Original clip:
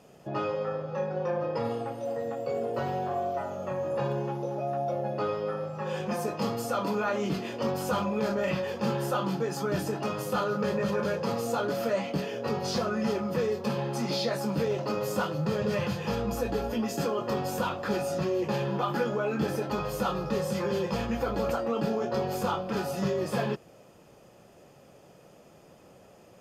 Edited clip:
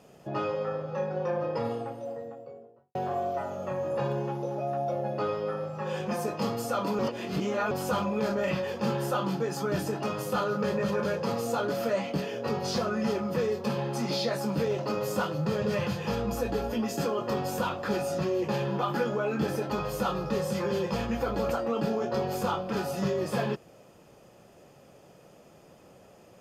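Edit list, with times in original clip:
1.48–2.95 s: studio fade out
6.99–7.71 s: reverse

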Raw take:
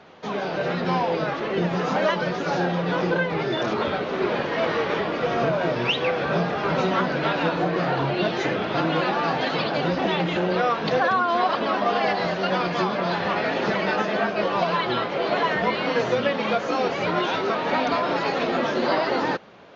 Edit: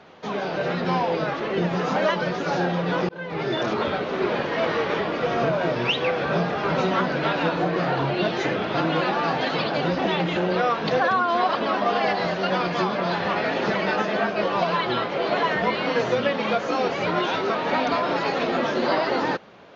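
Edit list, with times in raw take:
3.09–3.48 s: fade in

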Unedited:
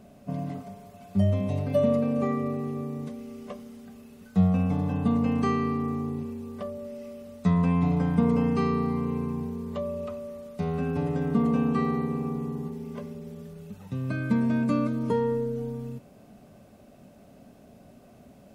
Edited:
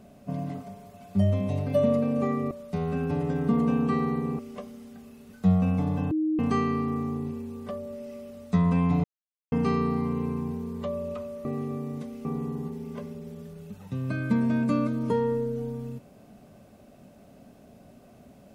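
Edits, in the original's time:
2.51–3.31 s: swap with 10.37–12.25 s
5.03–5.31 s: bleep 312 Hz -22.5 dBFS
7.96–8.44 s: mute

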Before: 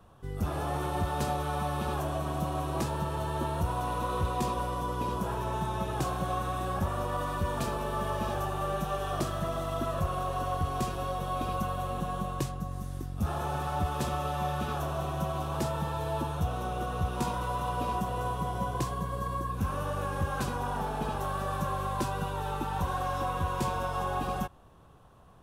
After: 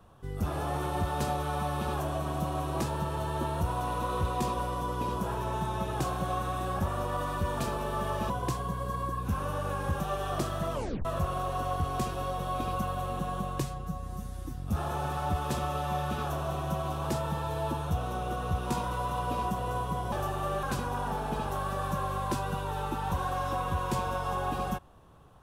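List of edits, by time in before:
8.30–8.81 s: swap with 18.62–20.32 s
9.54 s: tape stop 0.32 s
12.45–13.07 s: stretch 1.5×

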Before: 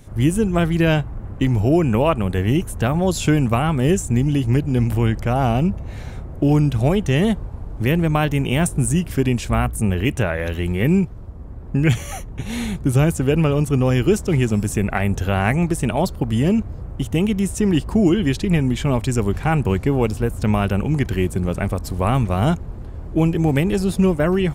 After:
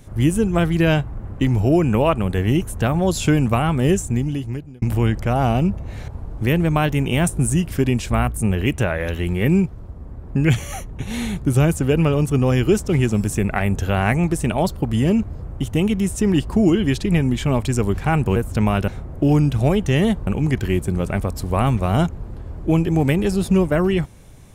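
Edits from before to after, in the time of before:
3.93–4.82 s: fade out
6.08–7.47 s: move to 20.75 s
19.75–20.23 s: delete

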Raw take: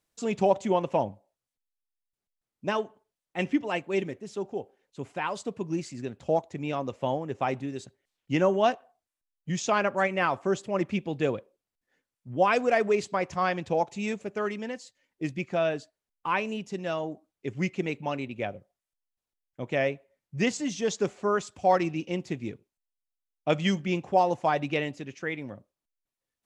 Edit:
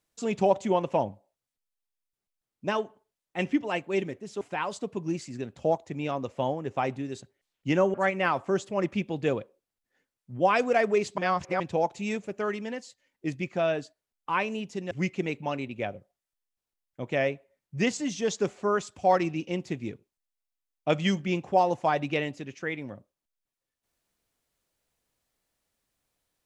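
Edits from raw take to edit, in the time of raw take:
4.41–5.05 s: delete
8.58–9.91 s: delete
13.15–13.57 s: reverse
16.88–17.51 s: delete

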